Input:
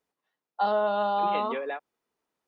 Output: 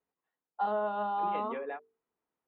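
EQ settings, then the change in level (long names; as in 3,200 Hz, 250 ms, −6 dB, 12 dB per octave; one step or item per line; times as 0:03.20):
high-frequency loss of the air 490 metres
mains-hum notches 50/100/150/200/250/300/350/400/450 Hz
notch filter 600 Hz, Q 13
−3.0 dB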